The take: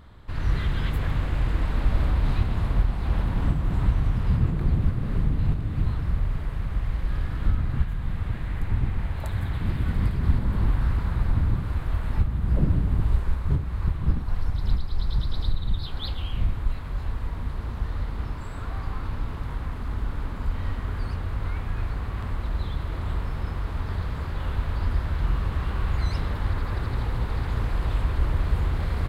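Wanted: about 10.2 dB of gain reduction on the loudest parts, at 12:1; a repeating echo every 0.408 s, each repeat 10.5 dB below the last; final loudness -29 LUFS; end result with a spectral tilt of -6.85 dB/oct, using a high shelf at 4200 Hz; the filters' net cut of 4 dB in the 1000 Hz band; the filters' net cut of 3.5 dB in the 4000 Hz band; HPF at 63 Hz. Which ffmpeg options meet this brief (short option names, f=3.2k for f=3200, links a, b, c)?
-af "highpass=63,equalizer=f=1k:t=o:g=-5,equalizer=f=4k:t=o:g=-6.5,highshelf=f=4.2k:g=5,acompressor=threshold=-28dB:ratio=12,aecho=1:1:408|816|1224:0.299|0.0896|0.0269,volume=5.5dB"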